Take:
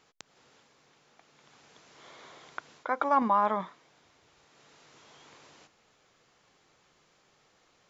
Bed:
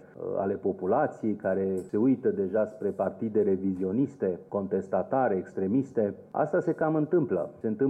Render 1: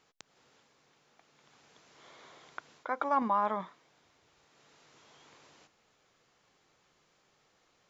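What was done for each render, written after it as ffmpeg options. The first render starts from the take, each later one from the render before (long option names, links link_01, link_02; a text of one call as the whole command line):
ffmpeg -i in.wav -af "volume=-4dB" out.wav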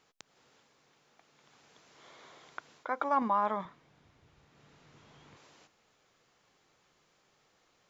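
ffmpeg -i in.wav -filter_complex "[0:a]asettb=1/sr,asplit=3[link_01][link_02][link_03];[link_01]atrim=end=3.654[link_04];[link_02]atrim=start=3.65:end=5.37,asetpts=PTS-STARTPTS,afade=type=in:duration=0.004:curve=qsin,afade=type=out:start_time=1.716:duration=0.004:curve=qsin,bass=frequency=250:gain=13,treble=frequency=4000:gain=-6[link_05];[link_03]atrim=start=5.366[link_06];[link_04][link_05]acrossfade=duration=0.004:curve1=hsin:curve2=qsin[link_07];[link_07][link_06]acrossfade=duration=0.004:curve1=qsin:curve2=hsin" out.wav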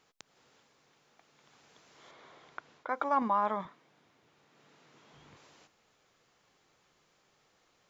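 ffmpeg -i in.wav -filter_complex "[0:a]asettb=1/sr,asplit=3[link_01][link_02][link_03];[link_01]atrim=end=2.114[link_04];[link_02]atrim=start=2.11:end=2.89,asetpts=PTS-STARTPTS,afade=type=in:duration=0.004:curve=qsin,afade=type=out:start_time=0.776:duration=0.004:curve=qsin,aemphasis=mode=reproduction:type=50kf[link_05];[link_03]atrim=start=2.886[link_06];[link_04][link_05]acrossfade=duration=0.004:curve1=hsin:curve2=qsin[link_07];[link_07][link_06]acrossfade=duration=0.004:curve1=qsin:curve2=hsin,asettb=1/sr,asplit=3[link_08][link_09][link_10];[link_08]atrim=end=3.674[link_11];[link_09]atrim=start=3.67:end=5.13,asetpts=PTS-STARTPTS,afade=type=in:duration=0.004:curve=qsin,afade=type=out:start_time=1.456:duration=0.004:curve=qsin,highpass=220[link_12];[link_10]atrim=start=5.126[link_13];[link_11][link_12]acrossfade=duration=0.004:curve1=hsin:curve2=qsin[link_14];[link_14][link_13]acrossfade=duration=0.004:curve1=qsin:curve2=hsin" out.wav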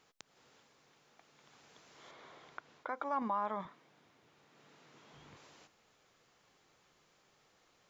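ffmpeg -i in.wav -af "alimiter=level_in=2dB:limit=-24dB:level=0:latency=1:release=257,volume=-2dB" out.wav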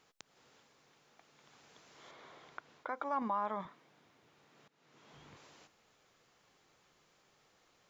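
ffmpeg -i in.wav -filter_complex "[0:a]asplit=2[link_01][link_02];[link_01]atrim=end=4.68,asetpts=PTS-STARTPTS,afade=type=out:start_time=4.676:duration=0.004:curve=hsin:silence=0.0891251[link_03];[link_02]atrim=start=4.68,asetpts=PTS-STARTPTS,afade=type=in:duration=0.43:silence=0.0891251[link_04];[link_03][link_04]concat=n=2:v=0:a=1" out.wav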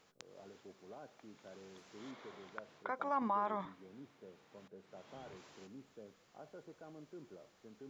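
ffmpeg -i in.wav -i bed.wav -filter_complex "[1:a]volume=-28dB[link_01];[0:a][link_01]amix=inputs=2:normalize=0" out.wav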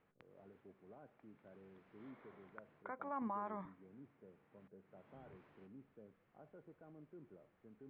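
ffmpeg -i in.wav -af "lowpass=frequency=2200:width=0.5412,lowpass=frequency=2200:width=1.3066,equalizer=frequency=970:width=0.3:gain=-8" out.wav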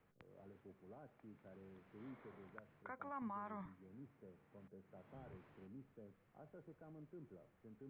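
ffmpeg -i in.wav -filter_complex "[0:a]acrossover=split=150|1200[link_01][link_02][link_03];[link_01]acontrast=54[link_04];[link_02]alimiter=level_in=20.5dB:limit=-24dB:level=0:latency=1:release=496,volume=-20.5dB[link_05];[link_04][link_05][link_03]amix=inputs=3:normalize=0" out.wav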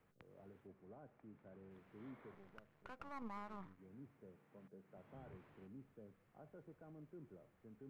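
ffmpeg -i in.wav -filter_complex "[0:a]asettb=1/sr,asplit=3[link_01][link_02][link_03];[link_01]atrim=end=0.674[link_04];[link_02]atrim=start=0.67:end=1.71,asetpts=PTS-STARTPTS,afade=type=in:duration=0.004:curve=qsin,afade=type=out:start_time=1.036:duration=0.004:curve=qsin,lowpass=frequency=2200:poles=1[link_05];[link_03]atrim=start=1.706[link_06];[link_04][link_05]acrossfade=duration=0.004:curve1=hsin:curve2=qsin[link_07];[link_07][link_06]acrossfade=duration=0.004:curve1=qsin:curve2=hsin,asettb=1/sr,asplit=3[link_08][link_09][link_10];[link_08]atrim=end=2.344[link_11];[link_09]atrim=start=2.34:end=3.79,asetpts=PTS-STARTPTS,afade=type=in:duration=0.004:curve=qsin,afade=type=out:start_time=1.446:duration=0.004:curve=qsin,aeval=exprs='if(lt(val(0),0),0.251*val(0),val(0))':channel_layout=same[link_12];[link_10]atrim=start=3.786[link_13];[link_11][link_12]acrossfade=duration=0.004:curve1=hsin:curve2=qsin[link_14];[link_14][link_13]acrossfade=duration=0.004:curve1=qsin:curve2=hsin,asettb=1/sr,asplit=3[link_15][link_16][link_17];[link_15]atrim=end=4.364[link_18];[link_16]atrim=start=4.36:end=4.98,asetpts=PTS-STARTPTS,afade=type=in:duration=0.004:curve=qsin,afade=type=out:start_time=0.616:duration=0.004:curve=qsin,highpass=frequency=120:width=0.5412,highpass=frequency=120:width=1.3066[link_19];[link_17]atrim=start=4.976[link_20];[link_18][link_19]acrossfade=duration=0.004:curve1=hsin:curve2=qsin[link_21];[link_21][link_20]acrossfade=duration=0.004:curve1=qsin:curve2=hsin" out.wav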